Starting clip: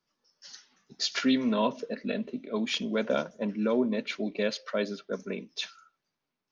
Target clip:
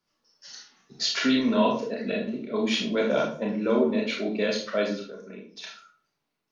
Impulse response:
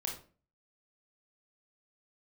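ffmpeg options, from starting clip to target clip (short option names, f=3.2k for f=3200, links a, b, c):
-filter_complex "[0:a]asettb=1/sr,asplit=3[a][b][c];[a]atrim=end=5.014[d];[b]atrim=start=5.01:end=5.64,asetpts=PTS-STARTPTS,afade=t=in:d=0.004:c=qsin,afade=t=out:st=0.626:d=0.004:c=qsin,acompressor=threshold=-44dB:ratio=5[e];[c]atrim=start=5.636[f];[d][e]acrossfade=d=0.004:c1=hsin:c2=qsin[g];[g][f]acrossfade=d=0.004:c1=qsin:c2=hsin[h];[1:a]atrim=start_sample=2205,asetrate=39690,aresample=44100[i];[h][i]afir=irnorm=-1:irlink=0,volume=2.5dB"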